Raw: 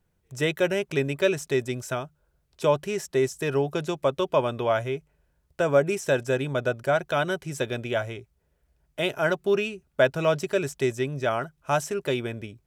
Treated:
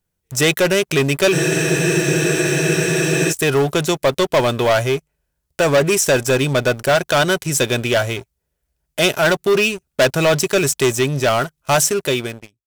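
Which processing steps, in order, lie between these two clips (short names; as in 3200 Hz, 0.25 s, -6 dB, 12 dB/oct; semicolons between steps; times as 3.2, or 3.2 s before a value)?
ending faded out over 0.85 s; sample leveller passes 3; high shelf 3400 Hz +11 dB; spectral freeze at 1.34, 1.96 s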